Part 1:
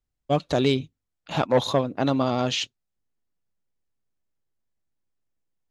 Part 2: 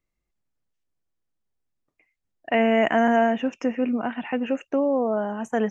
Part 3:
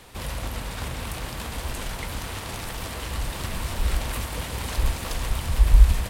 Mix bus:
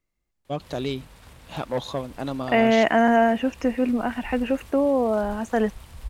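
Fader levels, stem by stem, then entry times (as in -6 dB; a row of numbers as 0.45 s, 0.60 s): -7.0 dB, +1.5 dB, -16.5 dB; 0.20 s, 0.00 s, 0.45 s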